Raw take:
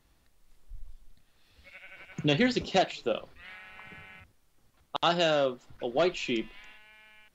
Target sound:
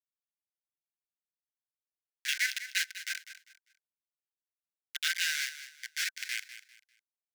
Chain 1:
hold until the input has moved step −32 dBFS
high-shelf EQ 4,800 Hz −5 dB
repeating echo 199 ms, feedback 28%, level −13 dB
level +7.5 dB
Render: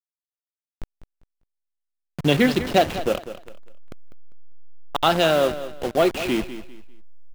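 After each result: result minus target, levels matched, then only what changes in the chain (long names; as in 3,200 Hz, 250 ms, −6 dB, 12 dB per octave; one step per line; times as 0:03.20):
2,000 Hz band −7.5 dB; hold until the input has moved: distortion −11 dB
add after hold until the input has moved: Chebyshev high-pass with heavy ripple 1,500 Hz, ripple 6 dB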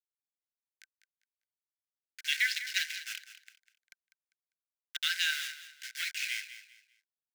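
hold until the input has moved: distortion −11 dB
change: hold until the input has moved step −22 dBFS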